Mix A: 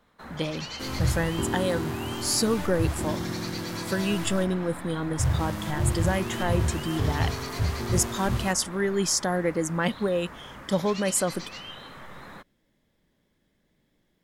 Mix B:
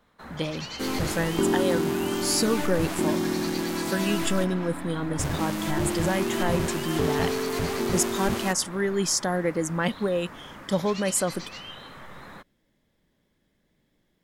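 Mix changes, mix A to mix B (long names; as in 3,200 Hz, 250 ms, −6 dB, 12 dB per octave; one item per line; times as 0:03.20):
second sound +6.5 dB
reverb: off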